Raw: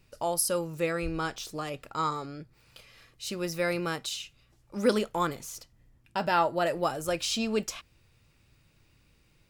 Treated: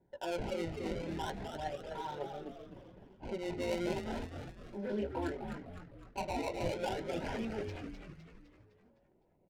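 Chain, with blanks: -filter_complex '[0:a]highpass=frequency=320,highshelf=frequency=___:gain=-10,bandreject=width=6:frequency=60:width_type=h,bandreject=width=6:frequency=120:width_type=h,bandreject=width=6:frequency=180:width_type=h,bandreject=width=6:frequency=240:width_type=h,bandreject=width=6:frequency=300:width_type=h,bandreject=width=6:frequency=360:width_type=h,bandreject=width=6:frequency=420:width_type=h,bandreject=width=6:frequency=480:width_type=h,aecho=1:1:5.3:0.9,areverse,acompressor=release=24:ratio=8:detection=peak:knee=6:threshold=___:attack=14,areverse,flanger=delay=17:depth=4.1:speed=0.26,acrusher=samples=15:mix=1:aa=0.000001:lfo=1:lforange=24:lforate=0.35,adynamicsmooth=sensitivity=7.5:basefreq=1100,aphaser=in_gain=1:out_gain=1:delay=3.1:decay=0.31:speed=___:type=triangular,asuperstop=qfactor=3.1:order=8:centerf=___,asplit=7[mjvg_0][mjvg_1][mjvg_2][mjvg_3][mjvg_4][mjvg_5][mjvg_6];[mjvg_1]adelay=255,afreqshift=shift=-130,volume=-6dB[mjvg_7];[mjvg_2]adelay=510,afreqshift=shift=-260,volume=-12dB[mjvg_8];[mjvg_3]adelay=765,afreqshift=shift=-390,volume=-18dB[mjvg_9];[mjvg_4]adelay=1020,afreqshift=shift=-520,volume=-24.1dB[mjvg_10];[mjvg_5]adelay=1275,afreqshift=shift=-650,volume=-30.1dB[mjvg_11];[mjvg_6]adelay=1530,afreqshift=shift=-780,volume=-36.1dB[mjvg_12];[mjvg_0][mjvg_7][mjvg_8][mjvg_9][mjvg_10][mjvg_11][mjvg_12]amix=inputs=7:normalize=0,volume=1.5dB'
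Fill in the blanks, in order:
3800, -36dB, 1.8, 1200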